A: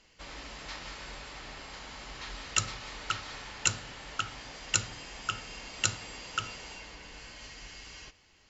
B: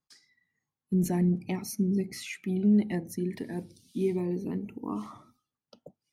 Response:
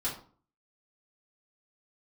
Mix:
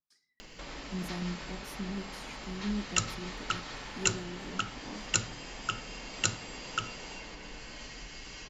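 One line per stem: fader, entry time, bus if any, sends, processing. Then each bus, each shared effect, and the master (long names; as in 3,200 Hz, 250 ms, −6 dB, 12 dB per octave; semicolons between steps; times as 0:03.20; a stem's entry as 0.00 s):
−1.0 dB, 0.40 s, no send, low-shelf EQ 370 Hz +10.5 dB; upward compression, threshold −35 dBFS; parametric band 70 Hz −14.5 dB 1.5 octaves
−13.0 dB, 0.00 s, send −16.5 dB, no processing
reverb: on, RT60 0.45 s, pre-delay 3 ms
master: no processing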